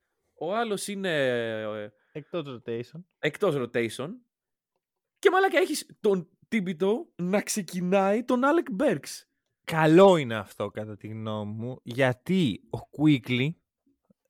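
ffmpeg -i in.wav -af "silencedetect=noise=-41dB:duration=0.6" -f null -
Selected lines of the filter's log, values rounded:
silence_start: 4.15
silence_end: 5.23 | silence_duration: 1.08
silence_start: 13.52
silence_end: 14.30 | silence_duration: 0.78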